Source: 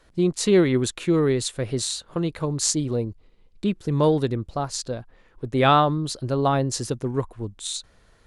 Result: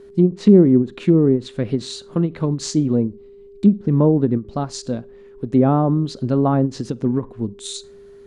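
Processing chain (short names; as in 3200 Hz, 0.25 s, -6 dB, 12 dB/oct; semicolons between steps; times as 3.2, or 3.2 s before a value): whine 400 Hz -44 dBFS; bell 220 Hz +13 dB 1.1 oct; treble ducked by the level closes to 700 Hz, closed at -9.5 dBFS; on a send at -21 dB: reverb RT60 0.30 s, pre-delay 33 ms; on the sum: ending taper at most 270 dB/s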